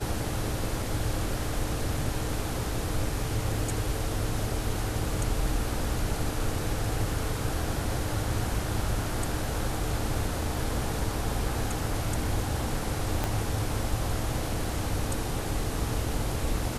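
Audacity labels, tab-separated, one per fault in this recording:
13.240000	13.240000	pop -13 dBFS

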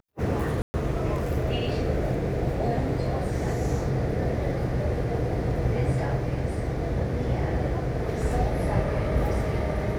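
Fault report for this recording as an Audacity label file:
0.620000	0.740000	gap 0.12 s

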